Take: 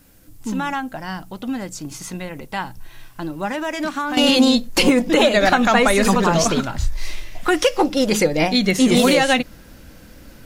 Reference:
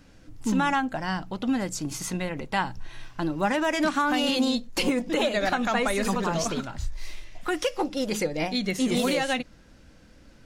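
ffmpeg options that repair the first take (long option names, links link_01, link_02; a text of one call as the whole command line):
ffmpeg -i in.wav -af "agate=range=-21dB:threshold=-34dB,asetnsamples=nb_out_samples=441:pad=0,asendcmd='4.17 volume volume -10dB',volume=0dB" out.wav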